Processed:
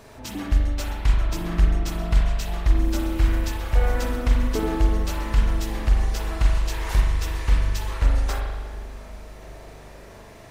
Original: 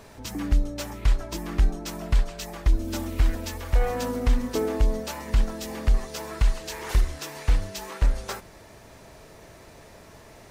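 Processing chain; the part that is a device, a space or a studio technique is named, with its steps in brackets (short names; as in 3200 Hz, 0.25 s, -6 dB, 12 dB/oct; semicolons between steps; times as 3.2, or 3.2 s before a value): dub delay into a spring reverb (darkening echo 0.358 s, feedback 62%, level -18 dB; spring tank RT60 1.4 s, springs 40 ms, chirp 25 ms, DRR -1 dB)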